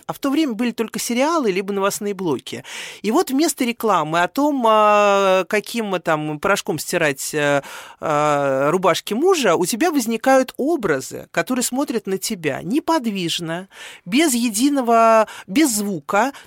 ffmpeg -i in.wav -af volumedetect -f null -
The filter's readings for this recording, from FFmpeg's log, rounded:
mean_volume: -18.9 dB
max_volume: -4.3 dB